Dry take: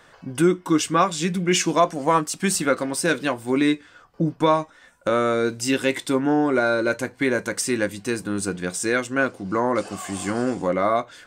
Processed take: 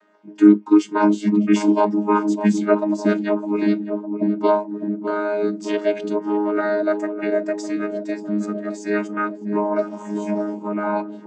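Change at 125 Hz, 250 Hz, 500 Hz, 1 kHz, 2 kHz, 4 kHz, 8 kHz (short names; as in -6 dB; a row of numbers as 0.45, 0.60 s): n/a, +5.0 dB, +1.5 dB, -1.5 dB, -5.0 dB, -10.5 dB, under -10 dB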